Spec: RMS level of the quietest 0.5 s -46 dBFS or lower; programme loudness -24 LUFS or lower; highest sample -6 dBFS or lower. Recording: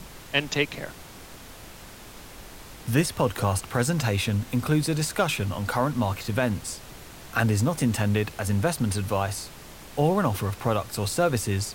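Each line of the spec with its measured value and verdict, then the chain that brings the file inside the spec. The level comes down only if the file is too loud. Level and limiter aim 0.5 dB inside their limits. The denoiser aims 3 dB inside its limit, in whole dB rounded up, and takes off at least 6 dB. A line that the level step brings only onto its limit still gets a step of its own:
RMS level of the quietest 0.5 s -44 dBFS: fail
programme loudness -26.0 LUFS: pass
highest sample -8.0 dBFS: pass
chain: noise reduction 6 dB, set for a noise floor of -44 dBFS

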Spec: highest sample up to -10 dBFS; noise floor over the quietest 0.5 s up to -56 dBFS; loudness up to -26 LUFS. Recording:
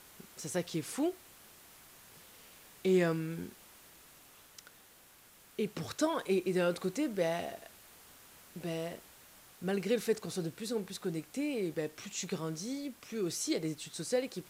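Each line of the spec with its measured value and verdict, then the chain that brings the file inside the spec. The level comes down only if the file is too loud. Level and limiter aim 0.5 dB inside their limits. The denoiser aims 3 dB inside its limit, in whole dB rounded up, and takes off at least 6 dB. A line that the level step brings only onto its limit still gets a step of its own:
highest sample -18.0 dBFS: pass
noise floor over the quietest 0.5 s -60 dBFS: pass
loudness -35.5 LUFS: pass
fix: none needed

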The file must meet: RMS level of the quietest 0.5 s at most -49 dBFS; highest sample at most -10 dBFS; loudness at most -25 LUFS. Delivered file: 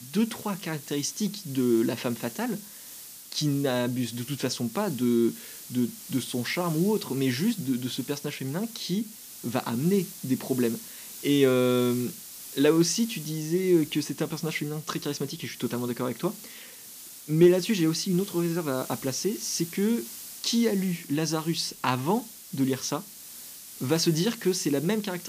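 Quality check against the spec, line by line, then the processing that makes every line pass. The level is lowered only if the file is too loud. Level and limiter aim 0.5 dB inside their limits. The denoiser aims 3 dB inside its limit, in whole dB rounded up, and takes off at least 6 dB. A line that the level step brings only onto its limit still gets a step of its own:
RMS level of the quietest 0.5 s -45 dBFS: fail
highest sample -9.0 dBFS: fail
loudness -27.5 LUFS: pass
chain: noise reduction 7 dB, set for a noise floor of -45 dBFS; peak limiter -10.5 dBFS

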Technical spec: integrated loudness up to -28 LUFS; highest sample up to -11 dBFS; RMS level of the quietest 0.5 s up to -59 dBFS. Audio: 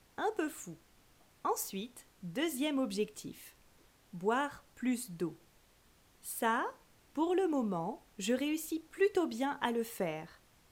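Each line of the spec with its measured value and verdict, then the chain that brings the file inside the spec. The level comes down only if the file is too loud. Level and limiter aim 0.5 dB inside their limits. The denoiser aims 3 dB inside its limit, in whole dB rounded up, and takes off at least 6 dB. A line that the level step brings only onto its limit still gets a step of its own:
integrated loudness -35.5 LUFS: pass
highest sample -17.0 dBFS: pass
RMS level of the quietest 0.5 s -66 dBFS: pass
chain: none needed

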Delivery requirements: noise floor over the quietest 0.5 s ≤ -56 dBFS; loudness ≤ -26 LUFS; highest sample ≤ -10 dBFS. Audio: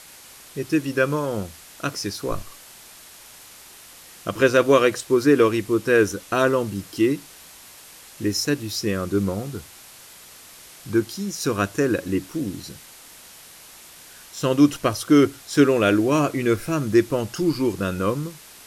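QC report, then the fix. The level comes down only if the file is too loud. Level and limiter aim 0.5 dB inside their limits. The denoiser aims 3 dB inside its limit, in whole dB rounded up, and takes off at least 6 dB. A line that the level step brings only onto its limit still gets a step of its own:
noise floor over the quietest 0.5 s -45 dBFS: fail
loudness -21.5 LUFS: fail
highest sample -3.5 dBFS: fail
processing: noise reduction 9 dB, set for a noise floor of -45 dBFS; trim -5 dB; peak limiter -10.5 dBFS

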